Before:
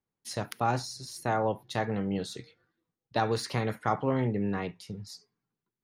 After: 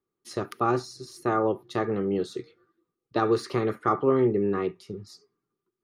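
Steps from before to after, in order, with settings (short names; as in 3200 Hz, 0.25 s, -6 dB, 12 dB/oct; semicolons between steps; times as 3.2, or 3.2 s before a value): high shelf 6900 Hz -4.5 dB; small resonant body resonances 370/1200 Hz, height 17 dB, ringing for 40 ms; gain -2 dB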